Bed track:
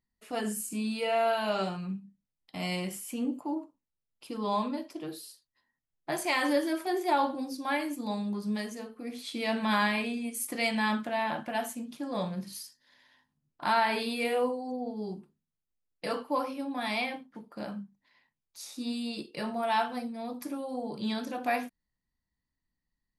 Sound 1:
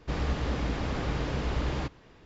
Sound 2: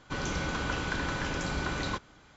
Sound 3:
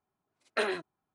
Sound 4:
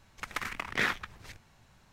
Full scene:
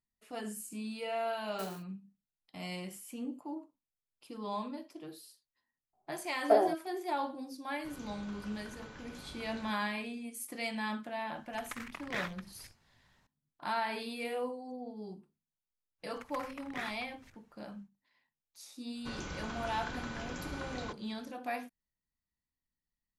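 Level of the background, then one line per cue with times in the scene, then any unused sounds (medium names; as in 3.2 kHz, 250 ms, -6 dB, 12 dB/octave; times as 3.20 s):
bed track -8 dB
1.02 s: add 3 -17.5 dB + sampling jitter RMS 0.12 ms
5.93 s: add 3 -1.5 dB + resonant low-pass 720 Hz, resonance Q 8.3
7.74 s: add 2 -18 dB
11.35 s: add 4 -9 dB
15.98 s: add 4 -12.5 dB, fades 0.10 s + peaking EQ 4.1 kHz -3.5 dB
18.95 s: add 2 -9.5 dB
not used: 1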